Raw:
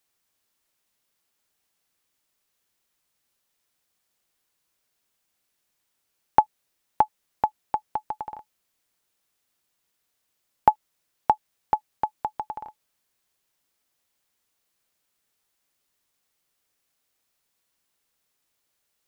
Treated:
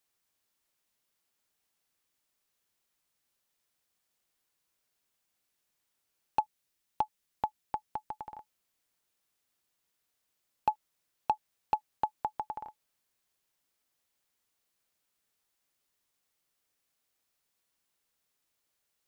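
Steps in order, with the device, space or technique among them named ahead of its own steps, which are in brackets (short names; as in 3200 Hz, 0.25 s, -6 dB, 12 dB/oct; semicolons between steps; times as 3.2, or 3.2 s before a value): 6.4–8.37 bell 730 Hz -4.5 dB 2.5 oct; limiter into clipper (limiter -10 dBFS, peak gain reduction 7.5 dB; hard clip -13 dBFS, distortion -22 dB); gain -4.5 dB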